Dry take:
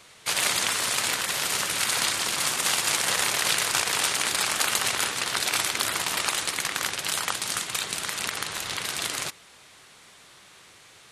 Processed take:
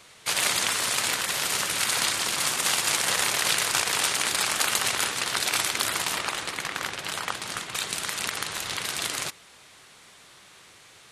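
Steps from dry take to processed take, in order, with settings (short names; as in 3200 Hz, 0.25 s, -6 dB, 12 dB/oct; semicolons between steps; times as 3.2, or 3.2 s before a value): 6.17–7.76 high shelf 4200 Hz -9.5 dB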